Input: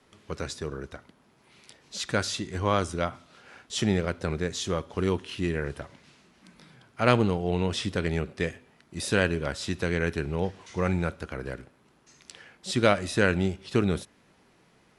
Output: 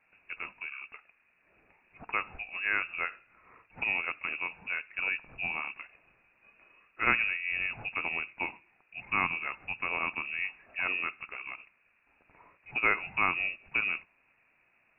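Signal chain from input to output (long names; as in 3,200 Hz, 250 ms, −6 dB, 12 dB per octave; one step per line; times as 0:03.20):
dynamic equaliser 1,700 Hz, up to +4 dB, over −39 dBFS, Q 0.75
voice inversion scrambler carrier 2,700 Hz
level −7 dB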